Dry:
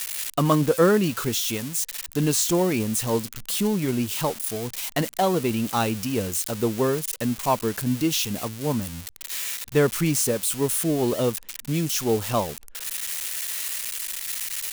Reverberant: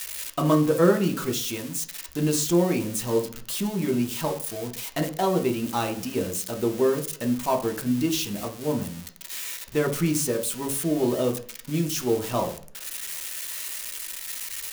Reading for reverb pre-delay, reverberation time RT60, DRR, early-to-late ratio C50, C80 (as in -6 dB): 3 ms, 0.50 s, 3.0 dB, 12.5 dB, 17.0 dB